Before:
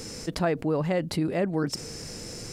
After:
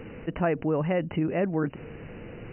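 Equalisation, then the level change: brick-wall FIR low-pass 3 kHz; 0.0 dB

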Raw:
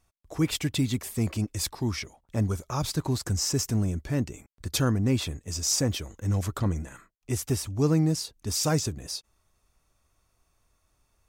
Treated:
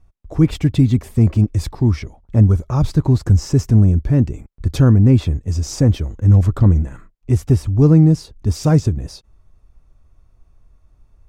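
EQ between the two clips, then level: tilt EQ -3.5 dB/octave; +4.5 dB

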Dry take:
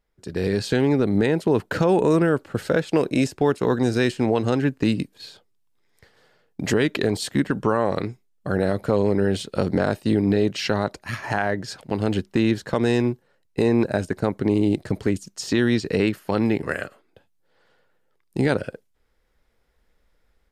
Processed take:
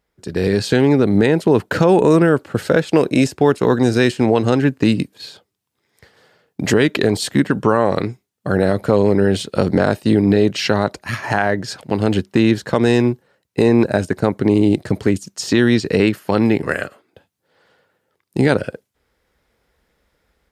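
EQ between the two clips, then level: high-pass 62 Hz; +6.0 dB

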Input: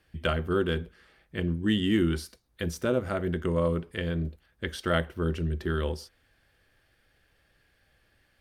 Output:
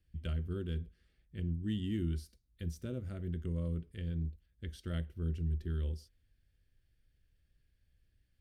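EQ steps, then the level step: amplifier tone stack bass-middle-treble 10-0-1; +6.5 dB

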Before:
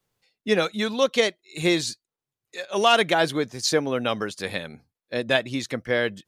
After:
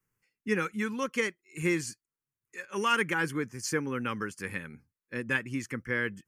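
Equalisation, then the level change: static phaser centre 1.6 kHz, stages 4; -3.0 dB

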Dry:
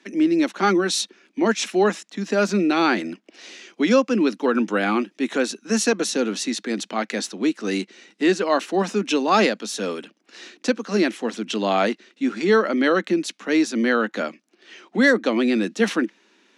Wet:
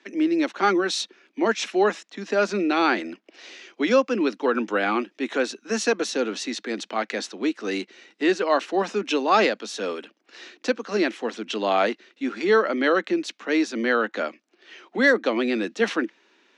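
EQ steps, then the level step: high-pass 320 Hz 12 dB/octave; distance through air 81 m; 0.0 dB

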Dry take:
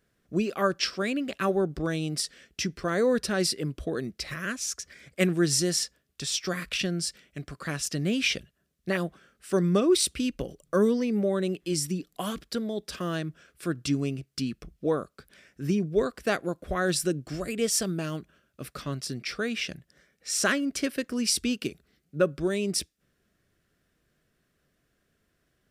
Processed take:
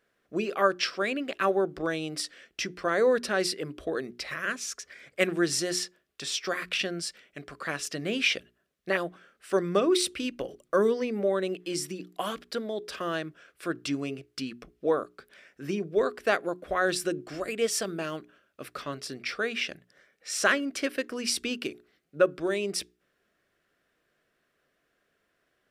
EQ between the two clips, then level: tone controls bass -15 dB, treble -8 dB; hum notches 60/120/180/240/300/360/420 Hz; +3.0 dB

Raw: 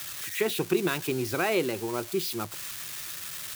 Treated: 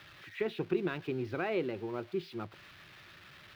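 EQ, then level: distance through air 360 m; peaking EQ 1 kHz -3 dB 0.68 oct; -5.0 dB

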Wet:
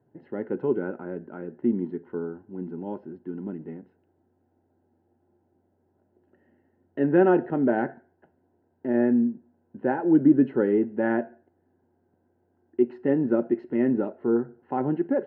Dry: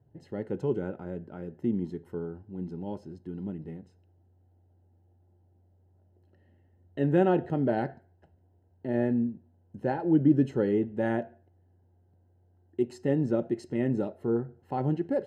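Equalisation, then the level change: cabinet simulation 200–2500 Hz, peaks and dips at 250 Hz +6 dB, 370 Hz +4 dB, 1 kHz +4 dB, 1.5 kHz +6 dB; +2.0 dB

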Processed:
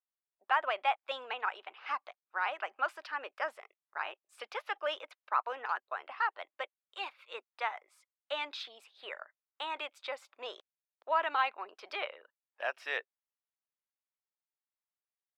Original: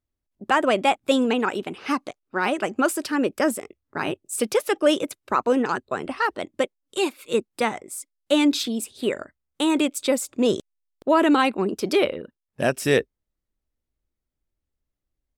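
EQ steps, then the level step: high-pass 770 Hz 24 dB/octave; distance through air 310 m; -5.5 dB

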